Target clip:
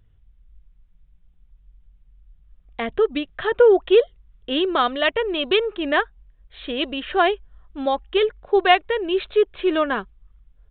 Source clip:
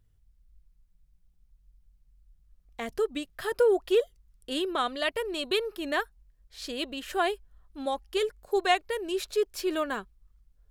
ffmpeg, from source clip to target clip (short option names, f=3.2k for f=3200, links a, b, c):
-af "aresample=8000,aresample=44100,volume=9dB"